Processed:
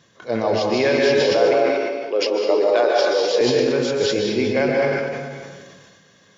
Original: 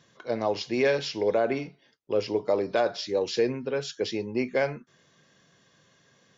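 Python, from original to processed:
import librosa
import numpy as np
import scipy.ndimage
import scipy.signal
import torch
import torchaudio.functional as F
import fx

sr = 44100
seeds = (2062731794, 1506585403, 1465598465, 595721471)

y = fx.highpass(x, sr, hz=320.0, slope=24, at=(1.2, 3.41))
y = fx.rev_plate(y, sr, seeds[0], rt60_s=1.5, hf_ratio=0.9, predelay_ms=120, drr_db=-2.0)
y = fx.sustainer(y, sr, db_per_s=30.0)
y = F.gain(torch.from_numpy(y), 4.0).numpy()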